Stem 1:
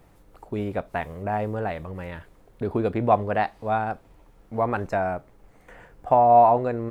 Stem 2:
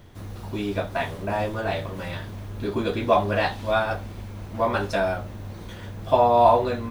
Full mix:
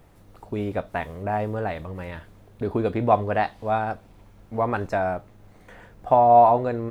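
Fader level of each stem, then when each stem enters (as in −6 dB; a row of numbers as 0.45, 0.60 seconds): +0.5, −17.0 decibels; 0.00, 0.00 seconds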